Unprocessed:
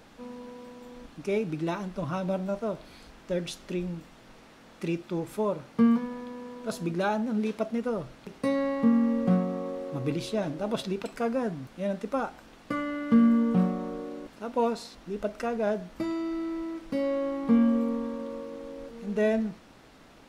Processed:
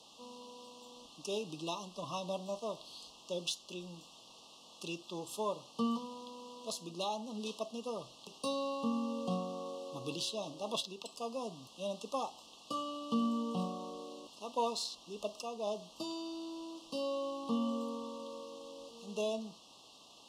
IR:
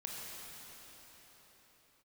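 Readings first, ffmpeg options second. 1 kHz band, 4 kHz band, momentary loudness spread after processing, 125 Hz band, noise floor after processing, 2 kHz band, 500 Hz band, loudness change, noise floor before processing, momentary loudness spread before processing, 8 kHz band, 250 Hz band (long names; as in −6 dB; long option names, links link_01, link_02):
−5.0 dB, +3.5 dB, 15 LU, −14.5 dB, −58 dBFS, −13.0 dB, −9.0 dB, −10.5 dB, −53 dBFS, 16 LU, can't be measured, −13.5 dB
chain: -filter_complex "[0:a]aderivative,acrossover=split=200|4700[link_01][link_02][link_03];[link_01]acontrast=35[link_04];[link_04][link_02][link_03]amix=inputs=3:normalize=0,alimiter=level_in=11.5dB:limit=-24dB:level=0:latency=1:release=490,volume=-11.5dB,adynamicsmooth=sensitivity=7.5:basefreq=5000,asuperstop=centerf=1800:order=20:qfactor=1.2,volume=14dB"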